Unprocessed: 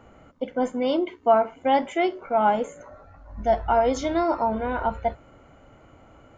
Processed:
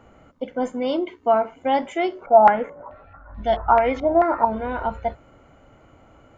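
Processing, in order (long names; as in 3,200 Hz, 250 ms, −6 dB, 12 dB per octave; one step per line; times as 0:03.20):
0:02.26–0:04.45: low-pass on a step sequencer 4.6 Hz 760–3,500 Hz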